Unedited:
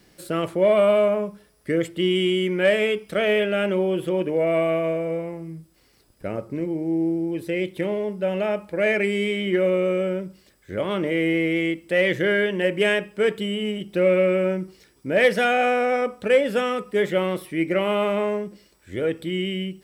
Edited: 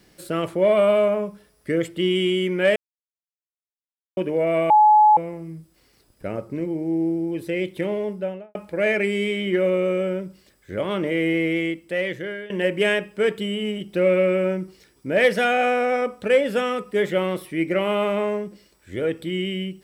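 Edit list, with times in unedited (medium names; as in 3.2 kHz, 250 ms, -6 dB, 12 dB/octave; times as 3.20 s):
2.76–4.17 s: mute
4.70–5.17 s: bleep 850 Hz -10 dBFS
8.09–8.55 s: studio fade out
11.51–12.50 s: fade out, to -17.5 dB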